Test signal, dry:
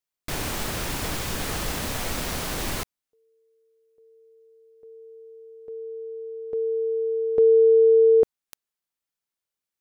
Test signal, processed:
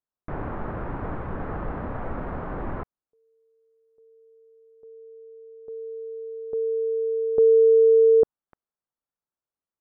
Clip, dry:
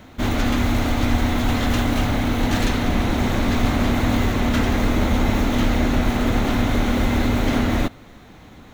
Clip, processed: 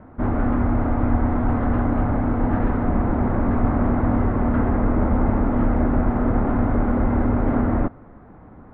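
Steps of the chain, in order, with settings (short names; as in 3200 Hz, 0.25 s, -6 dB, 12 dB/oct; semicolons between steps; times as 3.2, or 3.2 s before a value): LPF 1400 Hz 24 dB/oct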